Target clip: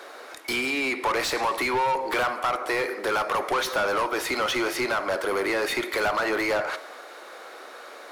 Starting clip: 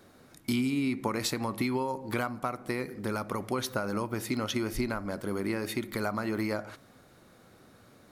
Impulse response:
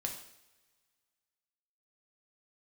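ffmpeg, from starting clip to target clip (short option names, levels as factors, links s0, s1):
-filter_complex "[0:a]highpass=f=390:w=0.5412,highpass=f=390:w=1.3066,asplit=2[s0][s1];[1:a]atrim=start_sample=2205,asetrate=26901,aresample=44100[s2];[s1][s2]afir=irnorm=-1:irlink=0,volume=0.119[s3];[s0][s3]amix=inputs=2:normalize=0,asplit=2[s4][s5];[s5]highpass=f=720:p=1,volume=20,asoftclip=type=tanh:threshold=0.168[s6];[s4][s6]amix=inputs=2:normalize=0,lowpass=f=2700:p=1,volume=0.501"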